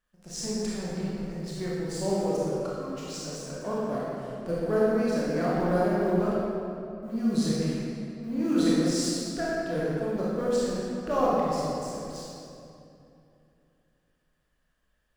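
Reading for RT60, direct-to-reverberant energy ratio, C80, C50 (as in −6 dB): 2.7 s, −8.0 dB, −2.0 dB, −4.5 dB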